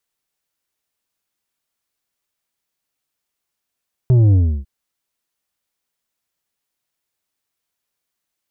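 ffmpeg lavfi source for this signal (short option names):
-f lavfi -i "aevalsrc='0.335*clip((0.55-t)/0.32,0,1)*tanh(2.24*sin(2*PI*130*0.55/log(65/130)*(exp(log(65/130)*t/0.55)-1)))/tanh(2.24)':d=0.55:s=44100"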